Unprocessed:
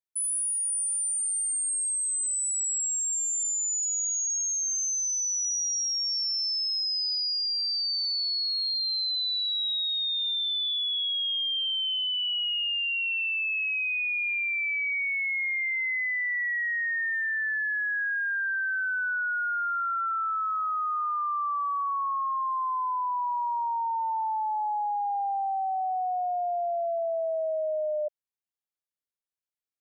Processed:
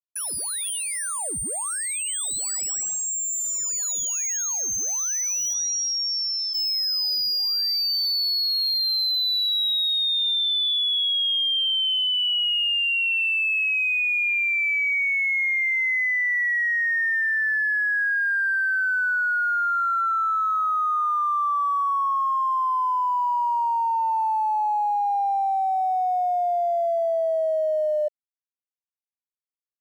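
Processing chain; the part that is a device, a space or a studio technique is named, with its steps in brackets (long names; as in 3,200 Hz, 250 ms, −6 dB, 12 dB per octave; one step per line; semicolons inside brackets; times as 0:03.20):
early transistor amplifier (dead-zone distortion −60 dBFS; slew-rate limiting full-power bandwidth 170 Hz)
0:05.53–0:06.53: low-pass filter 9,100 Hz → 5,300 Hz 24 dB per octave
level +6 dB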